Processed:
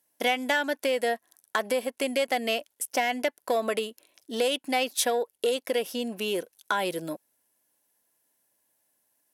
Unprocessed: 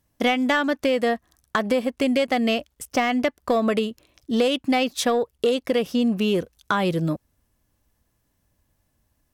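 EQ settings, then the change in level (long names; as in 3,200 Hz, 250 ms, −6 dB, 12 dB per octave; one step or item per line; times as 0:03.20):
high-pass filter 410 Hz 12 dB per octave
Butterworth band-reject 1,200 Hz, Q 6.8
parametric band 11,000 Hz +12 dB 0.7 octaves
−3.0 dB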